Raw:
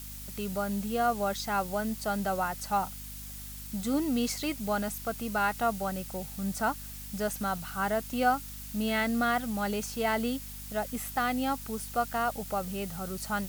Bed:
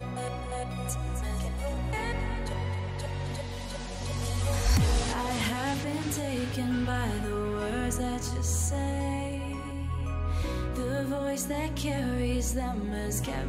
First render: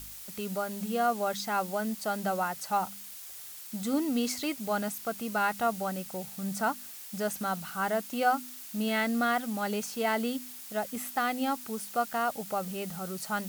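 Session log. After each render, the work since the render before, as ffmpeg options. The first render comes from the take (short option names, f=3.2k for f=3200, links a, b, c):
-af "bandreject=f=50:t=h:w=4,bandreject=f=100:t=h:w=4,bandreject=f=150:t=h:w=4,bandreject=f=200:t=h:w=4,bandreject=f=250:t=h:w=4"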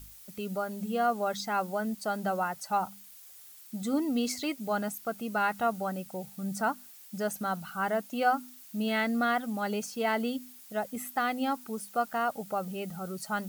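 -af "afftdn=nr=9:nf=-45"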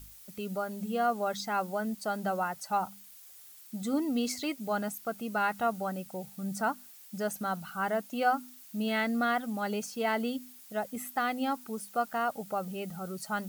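-af "volume=-1dB"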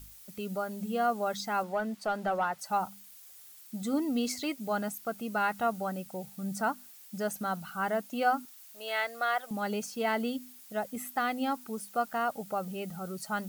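-filter_complex "[0:a]asettb=1/sr,asplit=3[a][b][c];[a]atrim=end=1.634[d];[b]atrim=start=1.63:end=2.59,asetpts=PTS-STARTPTS,afade=t=in:d=0.004:c=qsin,afade=t=out:st=0.956:d=0.004:c=qsin,asplit=2[e][f];[f]highpass=f=720:p=1,volume=11dB,asoftclip=type=tanh:threshold=-19.5dB[g];[e][g]amix=inputs=2:normalize=0,lowpass=f=1.9k:p=1,volume=-6dB[h];[c]atrim=start=2.586[i];[d][h]acrossfade=d=0.004:c1=hsin:c2=qsin[j];[j][i]acrossfade=d=0.004:c1=qsin:c2=hsin,asettb=1/sr,asplit=3[k][l][m];[k]atrim=end=8.454[n];[l]atrim=start=8.45:end=9.51,asetpts=PTS-STARTPTS,afade=t=in:d=0.004:c=qsin,afade=t=out:st=1.056:d=0.004:c=qsin,highpass=f=480:w=0.5412,highpass=f=480:w=1.3066[o];[m]atrim=start=9.506[p];[n][o]acrossfade=d=0.004:c1=hsin:c2=qsin[q];[q][p]acrossfade=d=0.004:c1=qsin:c2=hsin"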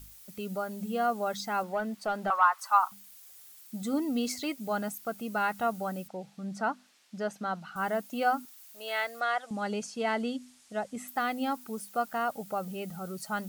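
-filter_complex "[0:a]asettb=1/sr,asplit=3[a][b][c];[a]atrim=end=2.304[d];[b]atrim=start=2.3:end=2.92,asetpts=PTS-STARTPTS,afade=t=in:d=0.004:c=qsin,afade=t=out:st=0.616:d=0.004:c=qsin,highpass=f=1.1k:t=q:w=6.8[e];[c]atrim=start=2.916[f];[d][e]acrossfade=d=0.004:c1=hsin:c2=qsin[g];[g][f]acrossfade=d=0.004:c1=qsin:c2=hsin,asettb=1/sr,asplit=3[h][i][j];[h]atrim=end=6.084[k];[i]atrim=start=6.08:end=7.76,asetpts=PTS-STARTPTS,afade=t=in:d=0.004:c=qsin,afade=t=out:st=1.676:d=0.004:c=qsin,highpass=170,lowpass=4.8k[l];[j]atrim=start=7.756[m];[k][l]acrossfade=d=0.004:c1=hsin:c2=qsin[n];[n][m]acrossfade=d=0.004:c1=qsin:c2=hsin,asettb=1/sr,asplit=3[o][p][q];[o]atrim=end=9.204[r];[p]atrim=start=9.2:end=11.08,asetpts=PTS-STARTPTS,afade=t=in:d=0.004:c=qsin,afade=t=out:st=1.876:d=0.004:c=qsin,lowpass=f=8.9k:w=0.5412,lowpass=f=8.9k:w=1.3066[s];[q]atrim=start=11.076[t];[r][s]acrossfade=d=0.004:c1=hsin:c2=qsin[u];[u][t]acrossfade=d=0.004:c1=qsin:c2=hsin"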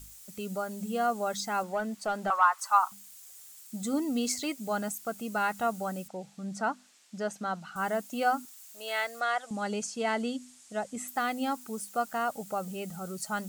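-af "equalizer=f=7.5k:t=o:w=0.71:g=8"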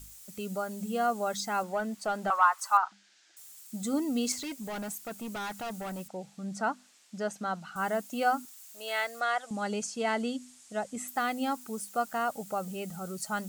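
-filter_complex "[0:a]asettb=1/sr,asplit=3[a][b][c];[a]atrim=end=2.774[d];[b]atrim=start=2.77:end=3.37,asetpts=PTS-STARTPTS,afade=t=in:d=0.004:c=qsin,afade=t=out:st=0.596:d=0.004:c=qsin,highpass=270,equalizer=f=330:t=q:w=4:g=9,equalizer=f=480:t=q:w=4:g=-8,equalizer=f=1.1k:t=q:w=4:g=-8,equalizer=f=1.6k:t=q:w=4:g=10,lowpass=f=5k:w=0.5412,lowpass=f=5k:w=1.3066[e];[c]atrim=start=3.366[f];[d][e]acrossfade=d=0.004:c1=hsin:c2=qsin[g];[g][f]acrossfade=d=0.004:c1=qsin:c2=hsin,asettb=1/sr,asplit=3[h][i][j];[h]atrim=end=4.324[k];[i]atrim=start=4.32:end=6.11,asetpts=PTS-STARTPTS,afade=t=in:d=0.004:c=qsin,afade=t=out:st=1.786:d=0.004:c=qsin,volume=34.5dB,asoftclip=hard,volume=-34.5dB[l];[j]atrim=start=6.106[m];[k][l]acrossfade=d=0.004:c1=hsin:c2=qsin[n];[n][m]acrossfade=d=0.004:c1=qsin:c2=hsin"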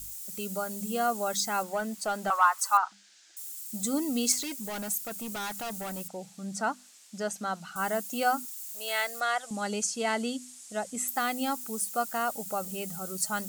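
-af "highshelf=f=4.9k:g=11,bandreject=f=60:t=h:w=6,bandreject=f=120:t=h:w=6,bandreject=f=180:t=h:w=6"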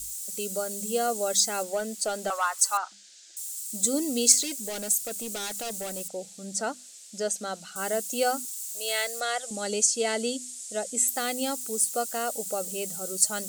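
-af "equalizer=f=125:t=o:w=1:g=-10,equalizer=f=500:t=o:w=1:g=9,equalizer=f=1k:t=o:w=1:g=-9,equalizer=f=4k:t=o:w=1:g=4,equalizer=f=8k:t=o:w=1:g=9"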